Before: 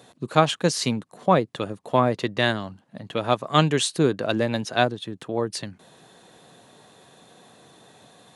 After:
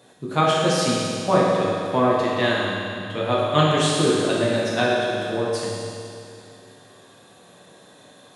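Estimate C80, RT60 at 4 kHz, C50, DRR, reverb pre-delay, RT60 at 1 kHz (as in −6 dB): −0.5 dB, 2.5 s, −2.0 dB, −6.5 dB, 10 ms, 2.5 s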